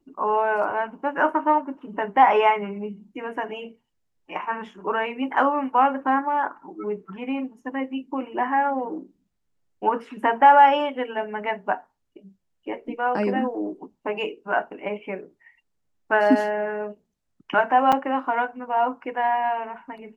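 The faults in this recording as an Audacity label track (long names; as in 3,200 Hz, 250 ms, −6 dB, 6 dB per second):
17.920000	17.930000	drop-out 5.5 ms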